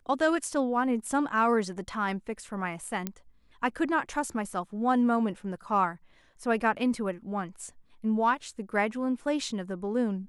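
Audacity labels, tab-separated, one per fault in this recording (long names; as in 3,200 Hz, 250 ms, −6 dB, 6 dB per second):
3.070000	3.070000	click −16 dBFS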